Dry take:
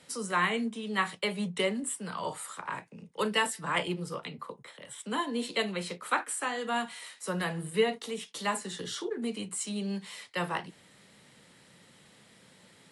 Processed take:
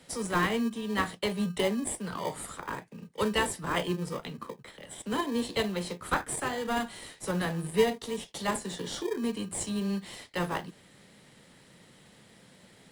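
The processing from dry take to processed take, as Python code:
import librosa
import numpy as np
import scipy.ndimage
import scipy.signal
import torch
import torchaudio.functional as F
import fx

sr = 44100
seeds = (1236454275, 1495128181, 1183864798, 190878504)

p1 = fx.dynamic_eq(x, sr, hz=2300.0, q=2.4, threshold_db=-50.0, ratio=4.0, max_db=-5)
p2 = fx.sample_hold(p1, sr, seeds[0], rate_hz=1400.0, jitter_pct=0)
y = p1 + F.gain(torch.from_numpy(p2), -6.5).numpy()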